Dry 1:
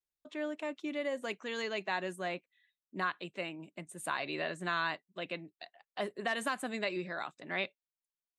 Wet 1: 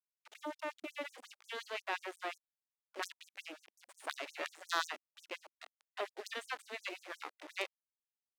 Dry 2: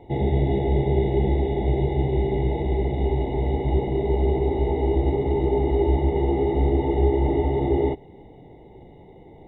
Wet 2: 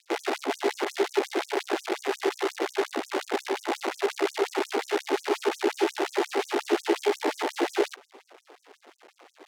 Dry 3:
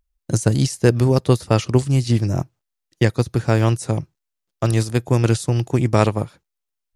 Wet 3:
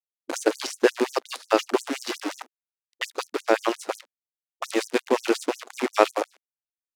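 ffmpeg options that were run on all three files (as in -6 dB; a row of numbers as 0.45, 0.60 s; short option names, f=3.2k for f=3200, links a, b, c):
-af "acrusher=bits=5:dc=4:mix=0:aa=0.000001,aemphasis=mode=reproduction:type=50fm,afftfilt=real='re*gte(b*sr/1024,240*pow(5900/240,0.5+0.5*sin(2*PI*5.6*pts/sr)))':imag='im*gte(b*sr/1024,240*pow(5900/240,0.5+0.5*sin(2*PI*5.6*pts/sr)))':win_size=1024:overlap=0.75,volume=1.5dB"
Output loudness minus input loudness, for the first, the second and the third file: -5.5, -5.5, -7.0 LU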